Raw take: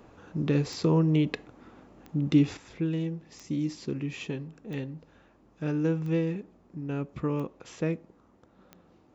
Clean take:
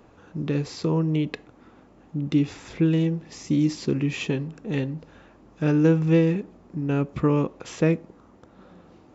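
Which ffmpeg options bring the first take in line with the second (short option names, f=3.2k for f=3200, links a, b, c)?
-af "adeclick=t=4,asetnsamples=n=441:p=0,asendcmd='2.57 volume volume 8.5dB',volume=0dB"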